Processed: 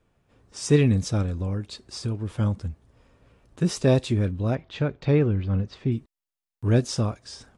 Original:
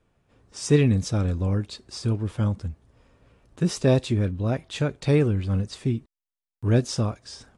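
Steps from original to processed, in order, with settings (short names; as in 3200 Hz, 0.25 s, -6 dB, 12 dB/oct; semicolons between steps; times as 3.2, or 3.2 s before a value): 1.22–2.31 compressor 2:1, threshold -27 dBFS, peak gain reduction 5 dB; 4.55–5.92 air absorption 200 m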